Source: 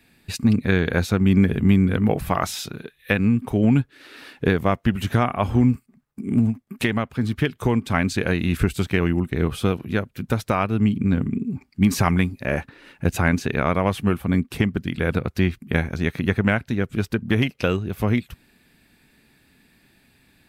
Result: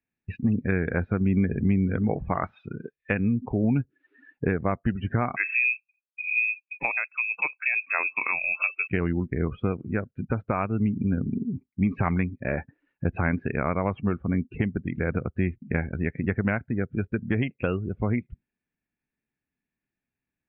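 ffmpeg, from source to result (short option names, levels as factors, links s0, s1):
-filter_complex "[0:a]asettb=1/sr,asplit=3[s0][s1][s2];[s0]atrim=end=5.364[s3];[s1]atrim=start=5.36:end=8.88,asetpts=PTS-STARTPTS,afade=t=in:d=0.004:c=qsin,afade=t=out:st=3.516:d=0.004:c=qsin,lowpass=f=2300:t=q:w=0.5098,lowpass=f=2300:t=q:w=0.6013,lowpass=f=2300:t=q:w=0.9,lowpass=f=2300:t=q:w=2.563,afreqshift=-2700[s4];[s2]atrim=start=8.876[s5];[s3][s4]acrossfade=d=0.004:c1=hsin:c2=qsin[s6];[s6][s5]acrossfade=d=0.004:c1=qsin:c2=hsin,lowpass=f=2700:w=0.5412,lowpass=f=2700:w=1.3066,afftdn=nr=30:nf=-33,acompressor=threshold=0.0316:ratio=1.5"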